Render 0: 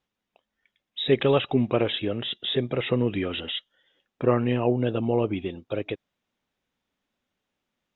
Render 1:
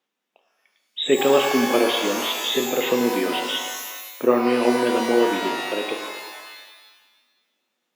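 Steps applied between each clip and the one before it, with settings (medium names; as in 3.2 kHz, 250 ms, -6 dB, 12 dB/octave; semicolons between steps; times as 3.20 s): high-pass 230 Hz 24 dB/octave; pitch-shifted reverb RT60 1.3 s, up +12 st, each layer -2 dB, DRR 4.5 dB; trim +3 dB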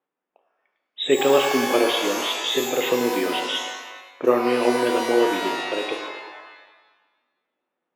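level-controlled noise filter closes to 1.4 kHz, open at -19 dBFS; peaking EQ 220 Hz -12.5 dB 0.2 oct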